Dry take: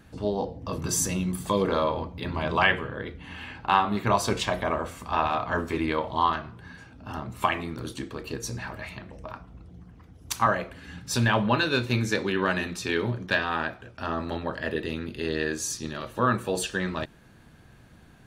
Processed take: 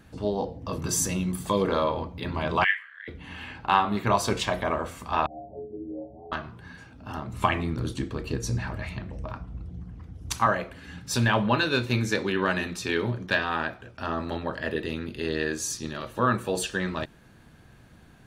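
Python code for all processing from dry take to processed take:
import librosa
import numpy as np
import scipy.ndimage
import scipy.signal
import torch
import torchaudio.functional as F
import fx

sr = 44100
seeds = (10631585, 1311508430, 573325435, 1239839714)

y = fx.chain(x, sr, fx.ladder_highpass(hz=1800.0, resonance_pct=75),
    fx.doubler(ms=30.0, db=-5.0), at=(2.64, 3.08))
y = fx.chain(y, sr, fx.cheby1_lowpass(hz=780.0, order=8),
    fx.stiff_resonator(f0_hz=64.0, decay_s=0.51, stiffness=0.03), at=(5.26, 6.32))
y = fx.chain(y, sr, fx.lowpass(hz=11000.0, slope=12),
    fx.low_shelf(hz=200.0, db=11.0), at=(7.33, 10.38))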